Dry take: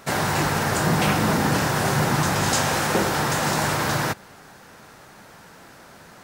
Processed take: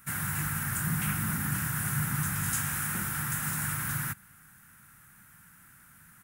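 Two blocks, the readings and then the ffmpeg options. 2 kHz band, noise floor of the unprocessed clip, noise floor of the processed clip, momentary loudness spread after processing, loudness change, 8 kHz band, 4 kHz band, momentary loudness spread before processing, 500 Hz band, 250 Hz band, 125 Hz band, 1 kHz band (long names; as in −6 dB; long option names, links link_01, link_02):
−9.5 dB, −47 dBFS, −57 dBFS, 3 LU, −8.5 dB, −4.5 dB, −17.0 dB, 3 LU, −28.5 dB, −11.5 dB, −7.5 dB, −16.0 dB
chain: -af "firequalizer=gain_entry='entry(150,0);entry(460,-26);entry(1400,-1);entry(4400,-14);entry(10000,10)':delay=0.05:min_phase=1,volume=-7dB"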